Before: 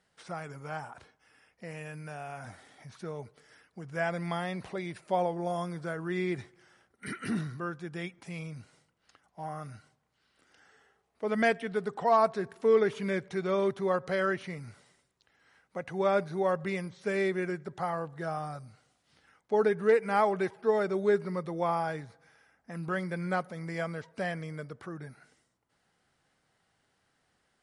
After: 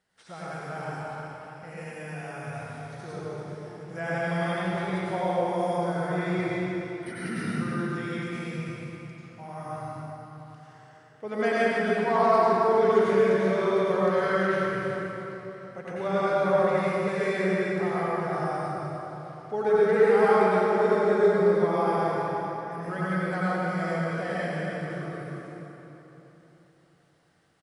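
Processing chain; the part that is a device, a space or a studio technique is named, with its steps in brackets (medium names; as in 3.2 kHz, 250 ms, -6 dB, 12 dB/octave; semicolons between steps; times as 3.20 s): cave (delay 311 ms -11 dB; reverberation RT60 3.6 s, pre-delay 83 ms, DRR -9.5 dB); trim -4.5 dB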